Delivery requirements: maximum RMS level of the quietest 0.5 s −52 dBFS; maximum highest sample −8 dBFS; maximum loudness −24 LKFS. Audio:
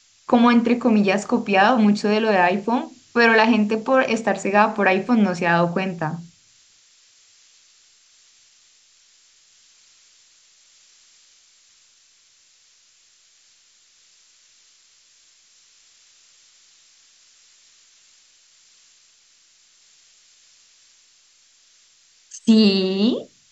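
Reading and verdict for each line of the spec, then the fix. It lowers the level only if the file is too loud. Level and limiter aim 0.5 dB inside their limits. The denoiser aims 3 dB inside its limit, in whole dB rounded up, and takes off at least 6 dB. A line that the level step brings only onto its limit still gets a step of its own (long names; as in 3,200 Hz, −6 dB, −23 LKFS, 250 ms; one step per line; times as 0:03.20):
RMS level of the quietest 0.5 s −57 dBFS: in spec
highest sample −1.5 dBFS: out of spec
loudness −18.5 LKFS: out of spec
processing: level −6 dB
brickwall limiter −8.5 dBFS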